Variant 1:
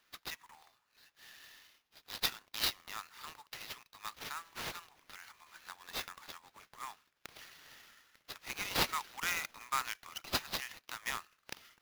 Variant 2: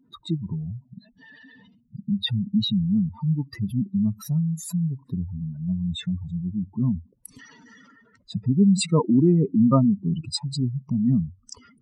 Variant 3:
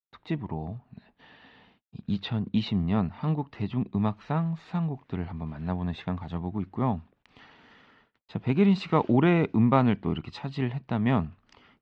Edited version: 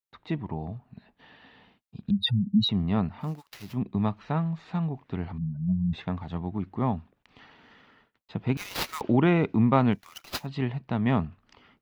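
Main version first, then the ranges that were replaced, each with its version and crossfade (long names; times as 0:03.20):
3
0:02.11–0:02.69: punch in from 2
0:03.30–0:03.70: punch in from 1, crossfade 0.24 s
0:05.38–0:05.93: punch in from 2
0:08.57–0:09.01: punch in from 1
0:09.97–0:10.43: punch in from 1, crossfade 0.10 s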